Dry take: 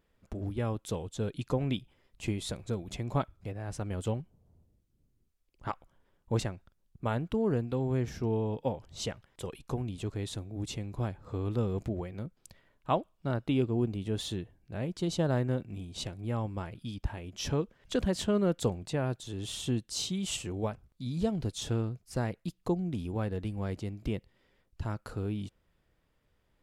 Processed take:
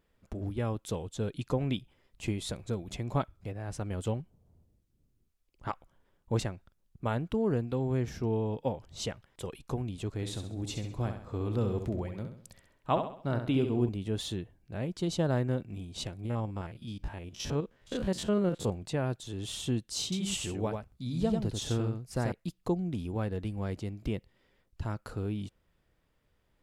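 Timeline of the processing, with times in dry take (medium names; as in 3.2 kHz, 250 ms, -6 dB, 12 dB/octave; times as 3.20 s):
10.12–13.89 s: flutter echo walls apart 11.4 m, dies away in 0.53 s
16.25–18.71 s: spectrogram pixelated in time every 50 ms
20.03–22.32 s: delay 91 ms -4.5 dB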